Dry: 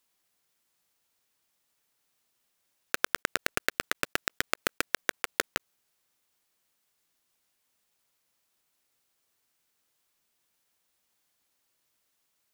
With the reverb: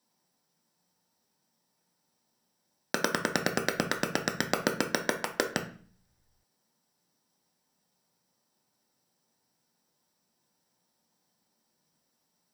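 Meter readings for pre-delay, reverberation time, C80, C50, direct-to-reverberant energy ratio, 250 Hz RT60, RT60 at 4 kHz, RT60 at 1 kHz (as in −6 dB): 3 ms, 0.45 s, 16.0 dB, 10.5 dB, 3.0 dB, 0.75 s, 0.40 s, 0.40 s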